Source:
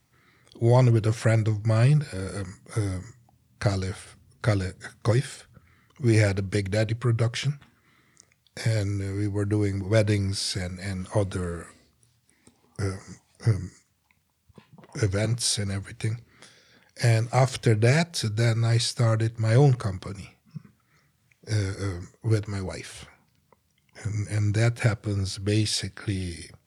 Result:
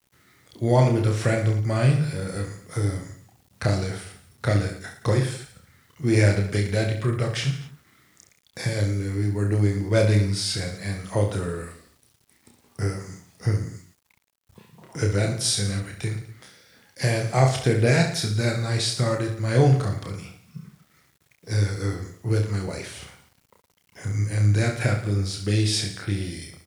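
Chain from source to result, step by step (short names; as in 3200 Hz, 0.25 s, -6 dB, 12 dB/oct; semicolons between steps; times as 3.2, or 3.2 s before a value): reverse bouncing-ball echo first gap 30 ms, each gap 1.25×, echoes 5; bit-crush 10-bit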